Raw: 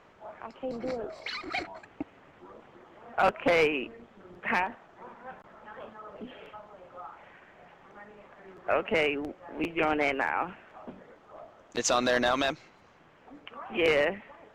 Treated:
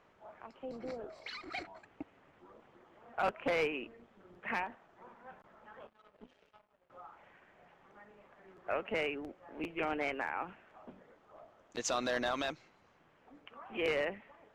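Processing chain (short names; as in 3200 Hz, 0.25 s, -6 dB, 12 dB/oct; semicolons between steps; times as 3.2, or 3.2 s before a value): 5.87–6.9 power-law curve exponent 2; gain -8.5 dB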